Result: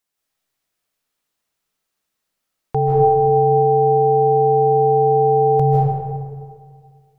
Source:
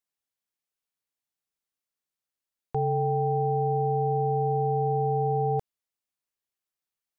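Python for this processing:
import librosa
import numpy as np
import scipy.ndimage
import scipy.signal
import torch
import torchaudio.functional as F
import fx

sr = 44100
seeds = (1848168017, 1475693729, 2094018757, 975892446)

y = fx.rev_freeverb(x, sr, rt60_s=1.9, hf_ratio=0.5, predelay_ms=115, drr_db=-5.0)
y = y * 10.0 ** (8.5 / 20.0)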